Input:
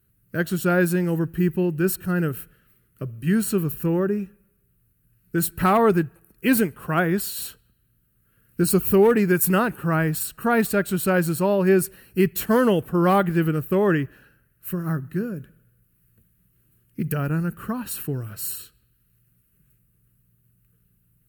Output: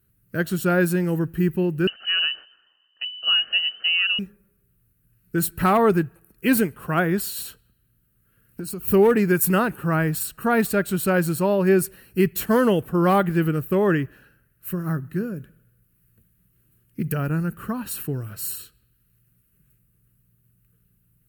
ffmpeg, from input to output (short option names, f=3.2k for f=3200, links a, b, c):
-filter_complex "[0:a]asettb=1/sr,asplit=3[a][b][c];[a]atrim=end=1.874[d];[b]atrim=start=1.87:end=4.19,asetpts=PTS-STARTPTS,afade=t=in:d=0.004:c=qsin,afade=t=out:st=2.316:d=0.004:c=qsin,lowpass=f=2.6k:t=q:w=0.5098,lowpass=f=2.6k:t=q:w=0.6013,lowpass=f=2.6k:t=q:w=0.9,lowpass=f=2.6k:t=q:w=2.563,afreqshift=-3100[e];[c]atrim=start=4.186[f];[d][e]acrossfade=d=0.004:c1=hsin:c2=qsin[g];[g][f]acrossfade=d=0.004:c1=qsin:c2=hsin,asettb=1/sr,asplit=3[h][i][j];[h]atrim=end=7.414[k];[i]atrim=start=7.41:end=8.88,asetpts=PTS-STARTPTS,afade=t=in:d=0.004:c=qsin,afade=t=out:st=1.466:d=0.004:c=qsin,acompressor=threshold=-29dB:ratio=6:attack=3.2:release=140:knee=1:detection=peak[l];[j]atrim=start=8.876[m];[k][l]acrossfade=d=0.004:c1=hsin:c2=qsin[n];[n][m]acrossfade=d=0.004:c1=qsin:c2=hsin"